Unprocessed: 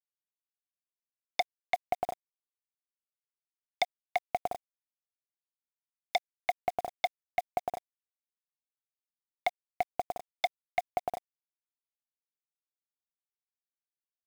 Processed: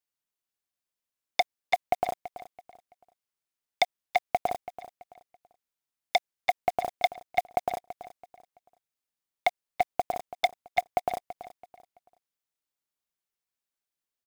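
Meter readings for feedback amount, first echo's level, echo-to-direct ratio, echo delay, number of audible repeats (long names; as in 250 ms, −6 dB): 31%, −14.5 dB, −14.0 dB, 332 ms, 3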